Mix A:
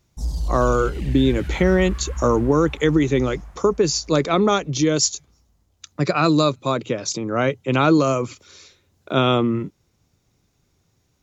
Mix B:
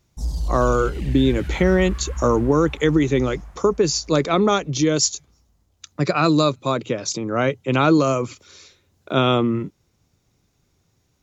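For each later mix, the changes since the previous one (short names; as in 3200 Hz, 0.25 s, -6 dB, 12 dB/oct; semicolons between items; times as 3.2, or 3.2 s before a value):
none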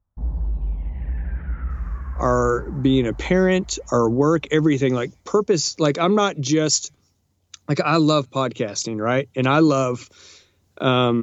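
speech: entry +1.70 s; background: add LPF 1700 Hz 24 dB/oct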